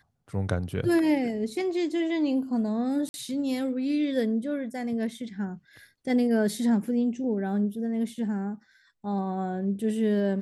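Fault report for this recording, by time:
0:03.09–0:03.14: drop-out 51 ms

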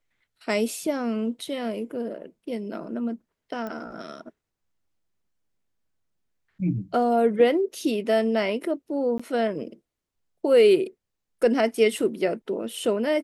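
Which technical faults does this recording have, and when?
0:03.67: click −22 dBFS
0:09.18–0:09.20: drop-out 15 ms

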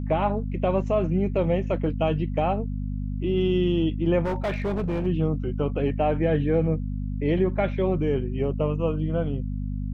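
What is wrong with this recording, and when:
mains hum 50 Hz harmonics 5 −29 dBFS
0:04.24–0:05.07: clipping −22.5 dBFS

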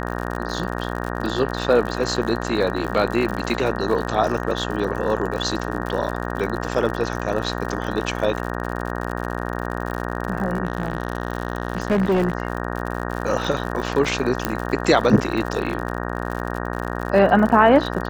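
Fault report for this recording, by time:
mains buzz 60 Hz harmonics 31 −27 dBFS
surface crackle 73 per second −27 dBFS
0:10.65–0:12.33: clipping −15 dBFS
0:14.45: click −5 dBFS

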